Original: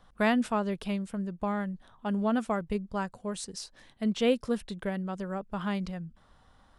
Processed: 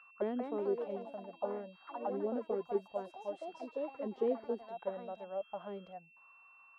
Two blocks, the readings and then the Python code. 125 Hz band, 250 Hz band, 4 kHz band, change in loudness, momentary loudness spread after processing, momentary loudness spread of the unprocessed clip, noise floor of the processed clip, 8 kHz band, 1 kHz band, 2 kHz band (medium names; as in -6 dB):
under -15 dB, -13.0 dB, under -15 dB, -8.0 dB, 11 LU, 11 LU, -63 dBFS, under -30 dB, -8.5 dB, -18.5 dB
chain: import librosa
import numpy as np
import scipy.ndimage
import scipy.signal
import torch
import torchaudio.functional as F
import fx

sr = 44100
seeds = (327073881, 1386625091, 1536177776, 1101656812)

y = x + 10.0 ** (-40.0 / 20.0) * np.sin(2.0 * np.pi * 2700.0 * np.arange(len(x)) / sr)
y = fx.auto_wah(y, sr, base_hz=380.0, top_hz=1400.0, q=6.9, full_db=-25.5, direction='down')
y = fx.echo_pitch(y, sr, ms=218, semitones=3, count=3, db_per_echo=-6.0)
y = y * 10.0 ** (4.0 / 20.0)